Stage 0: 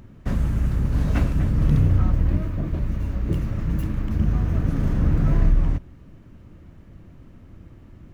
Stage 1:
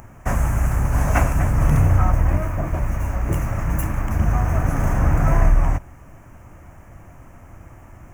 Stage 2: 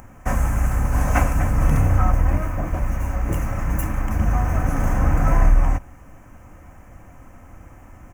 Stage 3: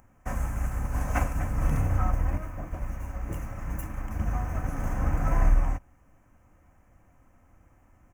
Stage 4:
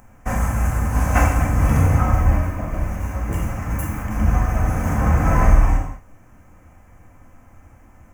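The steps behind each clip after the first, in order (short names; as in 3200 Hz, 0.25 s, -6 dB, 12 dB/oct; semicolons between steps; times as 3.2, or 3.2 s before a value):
EQ curve 120 Hz 0 dB, 190 Hz -5 dB, 460 Hz 0 dB, 740 Hz +13 dB, 1300 Hz +9 dB, 2400 Hz +7 dB, 4000 Hz -11 dB, 6300 Hz +13 dB; gain +2.5 dB
comb 3.9 ms, depth 32%; gain -1 dB
upward expander 1.5:1, over -30 dBFS; gain -5.5 dB
non-linear reverb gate 0.25 s falling, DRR -1 dB; gain +8 dB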